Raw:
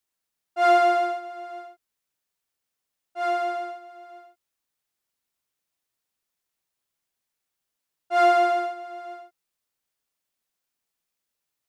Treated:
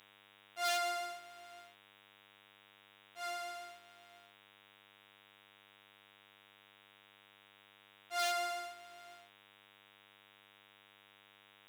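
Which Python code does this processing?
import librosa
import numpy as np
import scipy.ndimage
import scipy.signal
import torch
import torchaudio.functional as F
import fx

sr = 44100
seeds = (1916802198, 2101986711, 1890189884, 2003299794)

y = fx.dmg_buzz(x, sr, base_hz=100.0, harmonics=38, level_db=-45.0, tilt_db=-5, odd_only=False)
y = 10.0 ** (-13.0 / 20.0) * (np.abs((y / 10.0 ** (-13.0 / 20.0) + 3.0) % 4.0 - 2.0) - 1.0)
y = np.diff(y, prepend=0.0)
y = F.gain(torch.from_numpy(y), 1.0).numpy()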